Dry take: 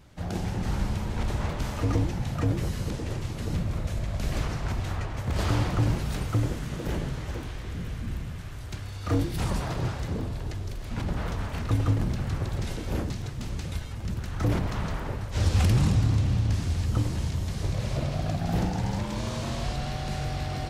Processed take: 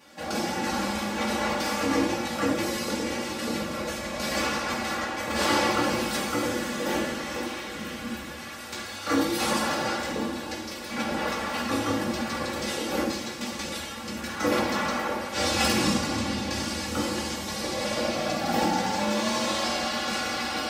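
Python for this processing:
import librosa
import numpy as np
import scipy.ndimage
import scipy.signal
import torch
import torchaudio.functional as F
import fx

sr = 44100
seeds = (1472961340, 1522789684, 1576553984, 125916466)

y = scipy.signal.sosfilt(scipy.signal.butter(2, 290.0, 'highpass', fs=sr, output='sos'), x)
y = y + 0.92 * np.pad(y, (int(3.6 * sr / 1000.0), 0))[:len(y)]
y = fx.rev_fdn(y, sr, rt60_s=0.69, lf_ratio=1.0, hf_ratio=1.0, size_ms=41.0, drr_db=-4.0)
y = y * 10.0 ** (2.0 / 20.0)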